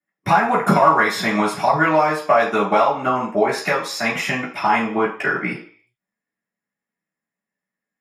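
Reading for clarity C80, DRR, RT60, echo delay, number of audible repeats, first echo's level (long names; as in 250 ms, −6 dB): 12.5 dB, −13.5 dB, 0.50 s, no echo audible, no echo audible, no echo audible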